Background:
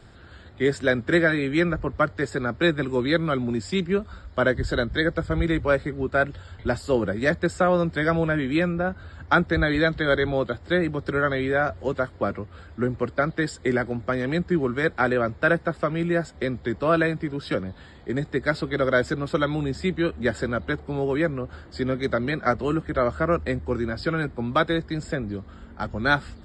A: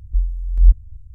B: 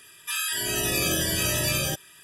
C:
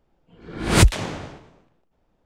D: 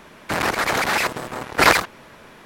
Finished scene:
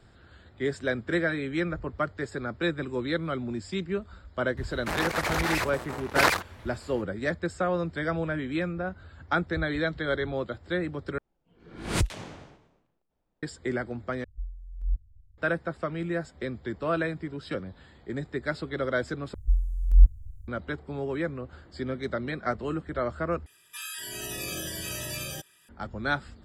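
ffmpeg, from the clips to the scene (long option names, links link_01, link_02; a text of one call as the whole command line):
ffmpeg -i bed.wav -i cue0.wav -i cue1.wav -i cue2.wav -i cue3.wav -filter_complex "[1:a]asplit=2[link_01][link_02];[0:a]volume=-7dB[link_03];[link_02]aemphasis=mode=production:type=50kf[link_04];[link_03]asplit=5[link_05][link_06][link_07][link_08][link_09];[link_05]atrim=end=11.184[link_10];[3:a]atrim=end=2.25,asetpts=PTS-STARTPTS,volume=-12dB[link_11];[link_06]atrim=start=13.426:end=14.244[link_12];[link_01]atrim=end=1.14,asetpts=PTS-STARTPTS,volume=-17.5dB[link_13];[link_07]atrim=start=15.376:end=19.344[link_14];[link_04]atrim=end=1.14,asetpts=PTS-STARTPTS,volume=-4.5dB[link_15];[link_08]atrim=start=20.476:end=23.464[link_16];[2:a]atrim=end=2.23,asetpts=PTS-STARTPTS,volume=-10dB[link_17];[link_09]atrim=start=25.686[link_18];[4:a]atrim=end=2.45,asetpts=PTS-STARTPTS,volume=-8dB,afade=type=in:duration=0.004:curve=hsin,afade=type=out:start_time=2.446:duration=0.004:curve=hsin,adelay=201537S[link_19];[link_10][link_11]acrossfade=duration=0.004:curve1=hsin:curve2=hsin[link_20];[link_20][link_12]acrossfade=duration=0.004:curve1=hsin:curve2=hsin[link_21];[link_21][link_13]acrossfade=duration=0.004:curve1=hsin:curve2=hsin[link_22];[link_22][link_14]acrossfade=duration=0.004:curve1=hsin:curve2=hsin[link_23];[link_23][link_15]acrossfade=duration=0.004:curve1=hsin:curve2=hsin[link_24];[link_24][link_16]acrossfade=duration=0.004:curve1=hsin:curve2=hsin[link_25];[link_25][link_17]acrossfade=duration=0.004:curve1=hsin:curve2=hsin[link_26];[link_26][link_18]acrossfade=duration=0.004:curve1=hsin:curve2=hsin[link_27];[link_27][link_19]amix=inputs=2:normalize=0" out.wav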